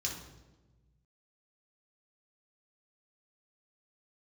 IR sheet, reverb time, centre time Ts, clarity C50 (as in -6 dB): 1.2 s, 37 ms, 4.5 dB